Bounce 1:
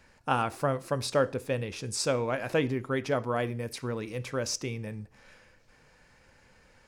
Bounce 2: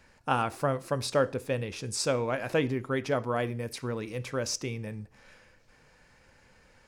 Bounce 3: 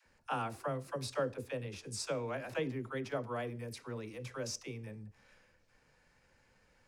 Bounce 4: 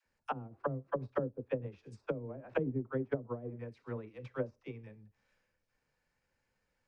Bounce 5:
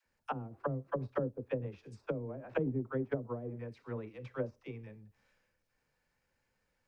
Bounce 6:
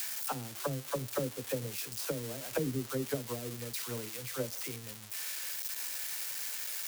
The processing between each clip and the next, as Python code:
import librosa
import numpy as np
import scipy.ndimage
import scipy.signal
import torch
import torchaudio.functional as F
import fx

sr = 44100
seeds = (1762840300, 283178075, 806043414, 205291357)

y1 = x
y2 = fx.dispersion(y1, sr, late='lows', ms=59.0, hz=420.0)
y2 = F.gain(torch.from_numpy(y2), -9.0).numpy()
y3 = fx.env_lowpass_down(y2, sr, base_hz=330.0, full_db=-33.5)
y3 = fx.upward_expand(y3, sr, threshold_db=-50.0, expansion=2.5)
y3 = F.gain(torch.from_numpy(y3), 8.5).numpy()
y4 = fx.transient(y3, sr, attack_db=-2, sustain_db=3)
y4 = F.gain(torch.from_numpy(y4), 1.0).numpy()
y5 = y4 + 0.5 * 10.0 ** (-27.5 / 20.0) * np.diff(np.sign(y4), prepend=np.sign(y4[:1]))